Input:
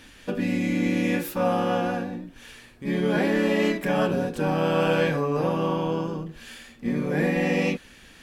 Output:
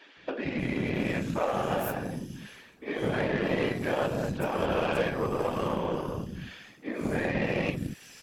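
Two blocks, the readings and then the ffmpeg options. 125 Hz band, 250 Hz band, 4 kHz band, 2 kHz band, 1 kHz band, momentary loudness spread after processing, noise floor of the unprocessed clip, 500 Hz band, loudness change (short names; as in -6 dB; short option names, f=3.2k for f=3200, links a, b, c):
-5.0 dB, -7.0 dB, -4.5 dB, -4.0 dB, -4.0 dB, 11 LU, -50 dBFS, -4.5 dB, -5.5 dB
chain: -filter_complex "[0:a]highpass=140,afftfilt=real='hypot(re,im)*cos(2*PI*random(0))':imag='hypot(re,im)*sin(2*PI*random(1))':win_size=512:overlap=0.75,acrossover=split=280|4700[a][b][c];[a]adelay=170[d];[c]adelay=590[e];[d][b][e]amix=inputs=3:normalize=0,aeval=exprs='0.141*(cos(1*acos(clip(val(0)/0.141,-1,1)))-cos(1*PI/2))+0.00794*(cos(7*acos(clip(val(0)/0.141,-1,1)))-cos(7*PI/2))':c=same,acompressor=threshold=-36dB:ratio=2,volume=8dB"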